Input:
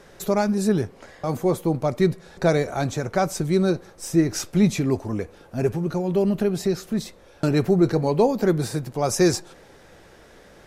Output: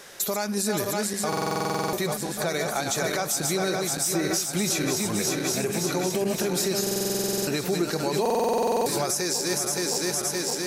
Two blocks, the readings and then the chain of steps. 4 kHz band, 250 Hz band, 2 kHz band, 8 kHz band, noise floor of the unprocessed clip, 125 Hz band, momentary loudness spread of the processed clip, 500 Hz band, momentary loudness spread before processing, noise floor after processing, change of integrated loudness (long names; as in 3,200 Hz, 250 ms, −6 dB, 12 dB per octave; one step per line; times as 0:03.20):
+7.0 dB, −6.5 dB, +3.0 dB, +9.0 dB, −50 dBFS, −8.5 dB, 3 LU, −3.5 dB, 9 LU, −32 dBFS, −2.5 dB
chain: feedback delay that plays each chunk backwards 284 ms, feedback 82%, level −7.5 dB
spectral tilt +3.5 dB per octave
downward compressor, threshold −23 dBFS, peak gain reduction 10 dB
brickwall limiter −18.5 dBFS, peak gain reduction 6.5 dB
buffer that repeats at 0:01.28/0:06.82/0:08.21, samples 2,048, times 13
level +3 dB